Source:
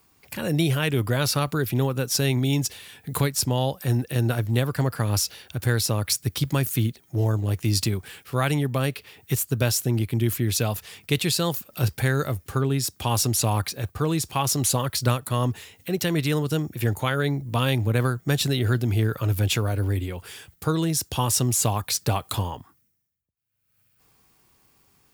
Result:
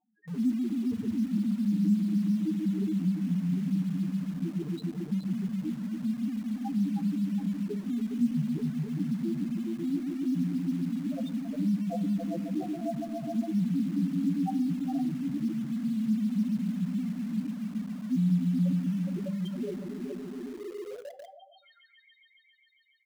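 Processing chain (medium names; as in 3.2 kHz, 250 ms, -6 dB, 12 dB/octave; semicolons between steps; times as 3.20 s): gliding tape speed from 133% -> 85%; peaking EQ 1.3 kHz +6 dB 0.33 oct; on a send: multi-head delay 138 ms, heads all three, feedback 74%, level -6 dB; on the sum: high-pass sweep 360 Hz -> 3.3 kHz, 20.35–22.09 s; de-hum 142.1 Hz, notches 4; loudest bins only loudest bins 2; pitch shift -9.5 st; in parallel at -9 dB: bit crusher 6-bit; on the sum: simulated room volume 730 m³, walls furnished, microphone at 0.46 m; trim -6.5 dB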